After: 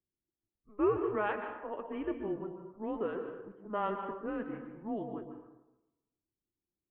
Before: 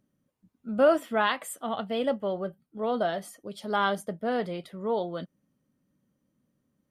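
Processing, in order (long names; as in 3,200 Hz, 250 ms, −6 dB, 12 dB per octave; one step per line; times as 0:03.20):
low-pass that shuts in the quiet parts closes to 500 Hz, open at −21 dBFS
dense smooth reverb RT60 1 s, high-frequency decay 0.55×, pre-delay 115 ms, DRR 5.5 dB
single-sideband voice off tune −210 Hz 410–2,600 Hz
level −7.5 dB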